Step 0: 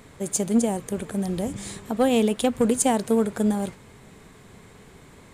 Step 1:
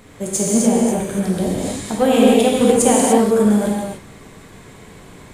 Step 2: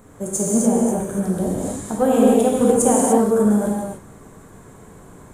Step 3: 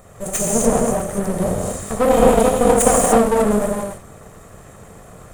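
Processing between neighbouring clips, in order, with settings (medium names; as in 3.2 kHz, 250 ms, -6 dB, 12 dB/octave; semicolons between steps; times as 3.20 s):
gated-style reverb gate 320 ms flat, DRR -5 dB; trim +2 dB
high-order bell 3.2 kHz -11.5 dB; trim -2 dB
comb filter that takes the minimum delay 1.6 ms; trim +4 dB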